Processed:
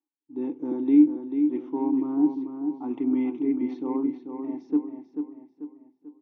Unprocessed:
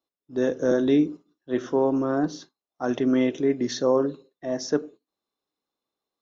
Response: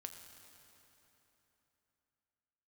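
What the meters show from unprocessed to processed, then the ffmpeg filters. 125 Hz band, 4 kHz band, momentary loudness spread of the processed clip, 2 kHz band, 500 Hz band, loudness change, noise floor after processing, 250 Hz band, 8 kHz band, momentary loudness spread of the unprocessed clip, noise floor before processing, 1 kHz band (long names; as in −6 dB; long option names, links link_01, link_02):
below −10 dB, below −20 dB, 16 LU, below −15 dB, −10.5 dB, −1.0 dB, −74 dBFS, +2.5 dB, can't be measured, 10 LU, below −85 dBFS, −6.5 dB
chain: -filter_complex "[0:a]asplit=3[link_01][link_02][link_03];[link_01]bandpass=frequency=300:width_type=q:width=8,volume=0dB[link_04];[link_02]bandpass=frequency=870:width_type=q:width=8,volume=-6dB[link_05];[link_03]bandpass=frequency=2240:width_type=q:width=8,volume=-9dB[link_06];[link_04][link_05][link_06]amix=inputs=3:normalize=0,adynamicsmooth=sensitivity=1.5:basefreq=3200,asplit=2[link_07][link_08];[link_08]adelay=440,lowpass=frequency=4300:poles=1,volume=-7dB,asplit=2[link_09][link_10];[link_10]adelay=440,lowpass=frequency=4300:poles=1,volume=0.43,asplit=2[link_11][link_12];[link_12]adelay=440,lowpass=frequency=4300:poles=1,volume=0.43,asplit=2[link_13][link_14];[link_14]adelay=440,lowpass=frequency=4300:poles=1,volume=0.43,asplit=2[link_15][link_16];[link_16]adelay=440,lowpass=frequency=4300:poles=1,volume=0.43[link_17];[link_07][link_09][link_11][link_13][link_15][link_17]amix=inputs=6:normalize=0,volume=5.5dB"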